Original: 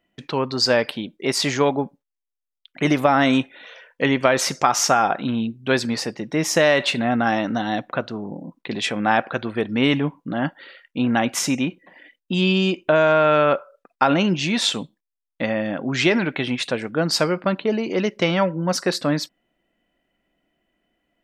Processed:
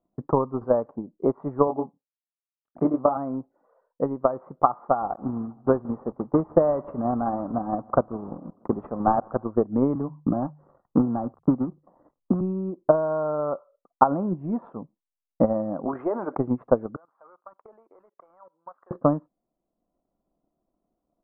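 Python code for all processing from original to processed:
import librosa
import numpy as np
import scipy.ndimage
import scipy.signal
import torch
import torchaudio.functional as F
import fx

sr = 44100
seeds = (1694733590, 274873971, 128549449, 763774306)

y = fx.chain(x, sr, fx.highpass(hz=130.0, slope=12),
    fx.doubler(ms=24.0, db=-4.0), at=(1.67, 3.17))
y = fx.chain(y, sr, fx.block_float(bits=3),
    fx.echo_feedback(ms=159, feedback_pct=59, wet_db=-21), at=(5.01, 9.44))
y = fx.chain(y, sr, fx.dead_time(dead_ms=0.18),
    fx.hum_notches(base_hz=50, count=3),
    fx.band_squash(depth_pct=70), at=(9.95, 12.41))
y = fx.chain(y, sr, fx.highpass(hz=520.0, slope=12),
    fx.env_flatten(amount_pct=50), at=(15.85, 16.37))
y = fx.chain(y, sr, fx.cvsd(bps=64000),
    fx.highpass(hz=1500.0, slope=12),
    fx.level_steps(step_db=21), at=(16.96, 18.91))
y = fx.transient(y, sr, attack_db=12, sustain_db=-3)
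y = scipy.signal.sosfilt(scipy.signal.cheby1(5, 1.0, 1200.0, 'lowpass', fs=sr, output='sos'), y)
y = fx.rider(y, sr, range_db=10, speed_s=2.0)
y = y * 10.0 ** (-7.5 / 20.0)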